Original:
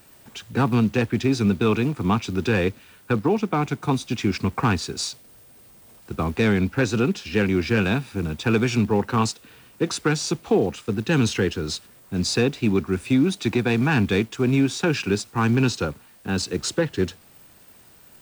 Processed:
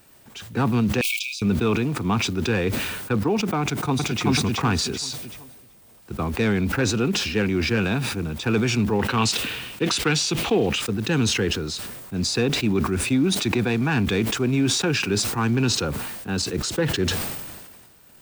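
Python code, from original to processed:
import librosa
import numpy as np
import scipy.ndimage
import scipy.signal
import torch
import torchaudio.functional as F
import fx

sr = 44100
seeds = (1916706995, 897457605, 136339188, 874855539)

y = fx.brickwall_highpass(x, sr, low_hz=2200.0, at=(1.01, 1.42))
y = fx.echo_throw(y, sr, start_s=3.61, length_s=0.62, ms=380, feedback_pct=30, wet_db=-0.5)
y = fx.peak_eq(y, sr, hz=2900.0, db=9.5, octaves=1.1, at=(8.99, 10.82))
y = fx.sustainer(y, sr, db_per_s=36.0)
y = y * 10.0 ** (-2.0 / 20.0)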